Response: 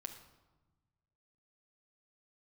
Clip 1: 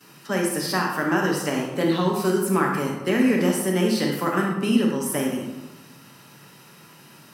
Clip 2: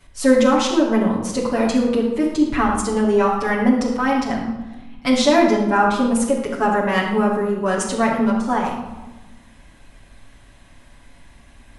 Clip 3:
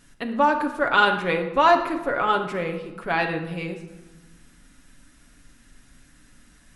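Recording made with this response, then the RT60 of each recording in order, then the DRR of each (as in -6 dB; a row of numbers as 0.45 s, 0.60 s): 3; 1.1 s, 1.1 s, 1.2 s; -15.0 dB, -5.5 dB, 3.5 dB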